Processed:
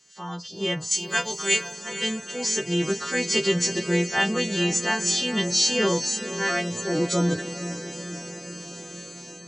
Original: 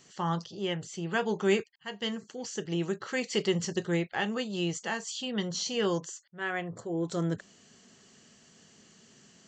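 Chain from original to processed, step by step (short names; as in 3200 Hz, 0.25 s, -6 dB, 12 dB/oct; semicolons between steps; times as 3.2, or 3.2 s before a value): frequency quantiser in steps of 2 st; 0.91–1.73 tilt +4 dB/oct; AGC gain up to 15.5 dB; diffused feedback echo 0.466 s, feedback 69%, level -11.5 dB; gain -7.5 dB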